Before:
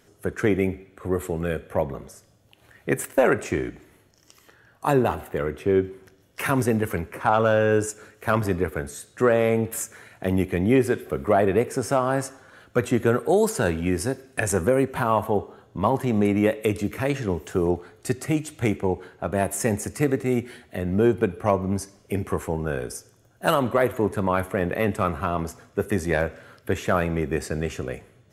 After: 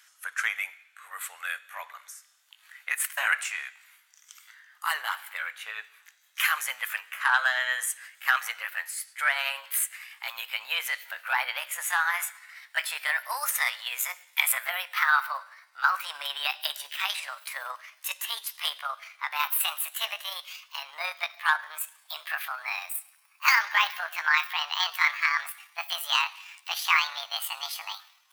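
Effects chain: gliding pitch shift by +10 st starting unshifted; inverse Chebyshev high-pass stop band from 370 Hz, stop band 60 dB; gain +5 dB

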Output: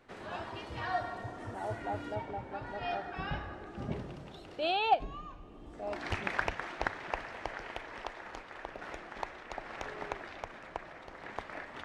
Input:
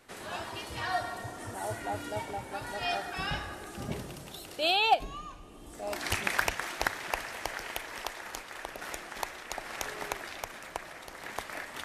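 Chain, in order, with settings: tape spacing loss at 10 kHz 22 dB, from 2.14 s at 10 kHz 33 dB, from 3.76 s at 10 kHz 26 dB

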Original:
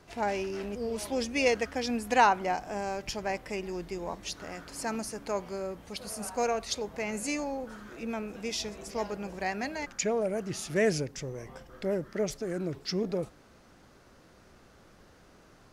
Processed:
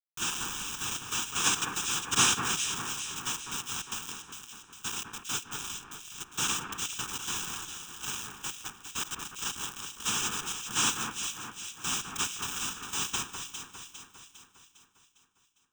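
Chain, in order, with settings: Wiener smoothing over 41 samples; steep low-pass 4100 Hz; low shelf 130 Hz -7.5 dB; in parallel at +2 dB: compressor 5:1, threshold -46 dBFS, peak gain reduction 25 dB; on the sum: noise vocoder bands 1; bit-crush 5-bit; fixed phaser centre 3000 Hz, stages 8; echo with dull and thin repeats by turns 0.202 s, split 2100 Hz, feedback 71%, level -5 dB; on a send at -18 dB: reverb RT60 2.1 s, pre-delay 5 ms

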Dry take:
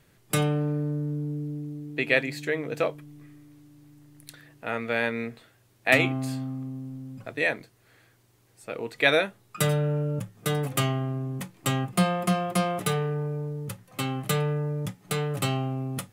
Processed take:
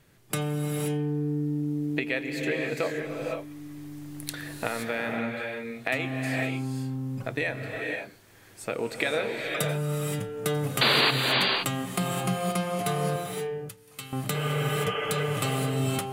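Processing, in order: recorder AGC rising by 6.2 dB/s; 10.81–11.11 painted sound noise 210–4800 Hz -8 dBFS; compressor 2:1, threshold -31 dBFS, peak gain reduction 14 dB; 13.16–14.13 passive tone stack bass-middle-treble 5-5-5; 14.37–15.21 spectral repair 240–3400 Hz before; reverb, pre-delay 74 ms, DRR 1.5 dB

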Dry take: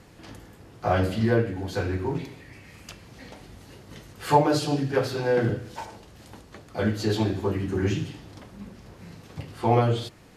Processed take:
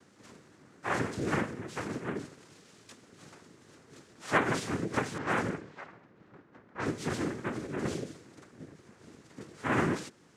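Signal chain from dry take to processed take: noise vocoder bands 3; 5.18–6.86 low-pass opened by the level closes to 1700 Hz, open at -19 dBFS; gain -8 dB

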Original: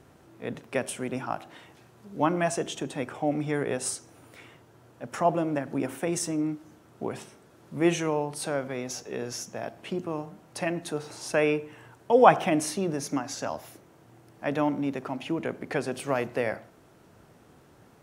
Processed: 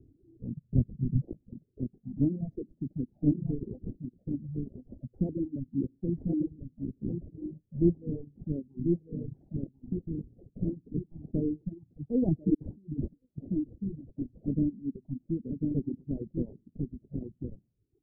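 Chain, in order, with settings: half-waves squared off; echo 1.045 s -3.5 dB; envelope flanger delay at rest 2.9 ms, full sweep at -19 dBFS; reverb removal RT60 1.1 s; 12.54–13.38 negative-ratio compressor -35 dBFS, ratio -0.5; decimation with a swept rate 20×, swing 160% 0.31 Hz; inverse Chebyshev low-pass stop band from 1100 Hz, stop band 60 dB; 0.57–1.22 resonant low shelf 210 Hz +9 dB, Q 1.5; reverb removal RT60 1.1 s

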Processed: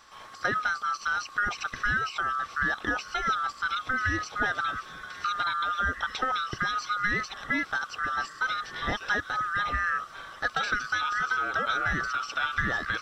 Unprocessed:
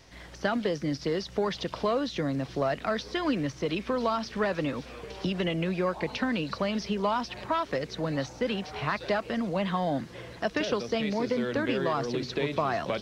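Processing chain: band-swap scrambler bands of 1000 Hz

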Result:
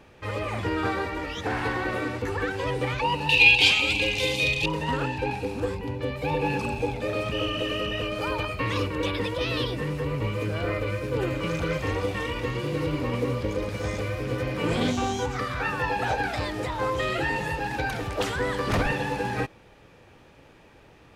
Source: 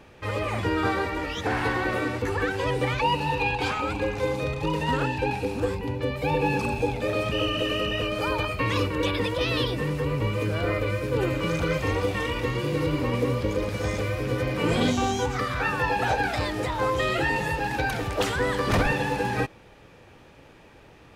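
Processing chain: 3.29–4.66 resonant high shelf 2000 Hz +12.5 dB, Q 3; Doppler distortion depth 0.13 ms; gain -2 dB

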